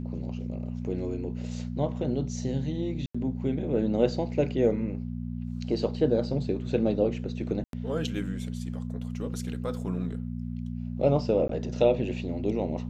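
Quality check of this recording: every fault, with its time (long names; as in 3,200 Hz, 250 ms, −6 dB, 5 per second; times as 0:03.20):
mains hum 60 Hz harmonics 4 −34 dBFS
0:03.06–0:03.15: drop-out 85 ms
0:07.64–0:07.73: drop-out 92 ms
0:11.48–0:11.49: drop-out 13 ms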